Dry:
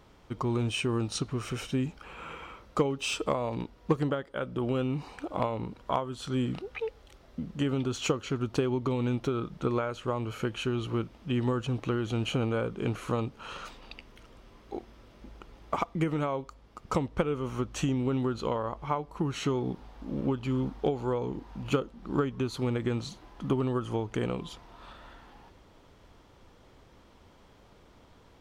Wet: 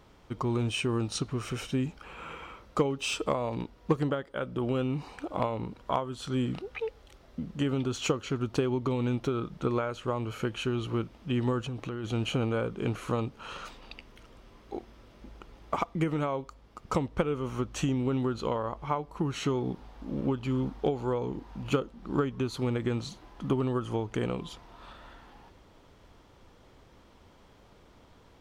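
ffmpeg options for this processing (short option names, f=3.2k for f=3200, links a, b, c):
-filter_complex "[0:a]asplit=3[a][b][c];[a]afade=t=out:st=11.63:d=0.02[d];[b]acompressor=threshold=-32dB:ratio=6:attack=3.2:release=140:knee=1:detection=peak,afade=t=in:st=11.63:d=0.02,afade=t=out:st=12.03:d=0.02[e];[c]afade=t=in:st=12.03:d=0.02[f];[d][e][f]amix=inputs=3:normalize=0"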